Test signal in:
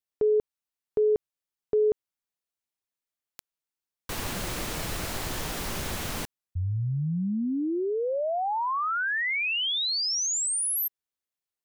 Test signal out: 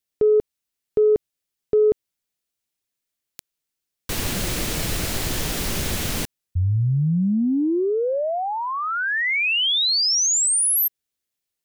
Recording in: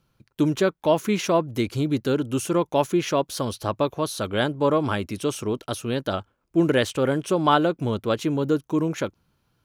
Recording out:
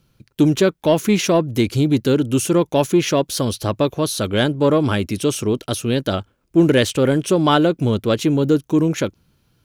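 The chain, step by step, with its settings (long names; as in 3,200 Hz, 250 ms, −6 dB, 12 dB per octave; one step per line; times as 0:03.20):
parametric band 1,000 Hz −7 dB 1.6 octaves
in parallel at −6 dB: soft clipping −19 dBFS
on the sum: level +5 dB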